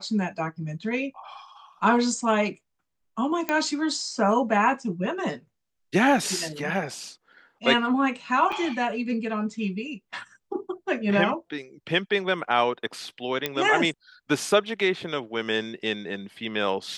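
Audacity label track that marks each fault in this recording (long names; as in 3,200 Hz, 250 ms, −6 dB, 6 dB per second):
3.490000	3.490000	click −11 dBFS
8.520000	8.530000	drop-out 5.3 ms
13.460000	13.460000	click −10 dBFS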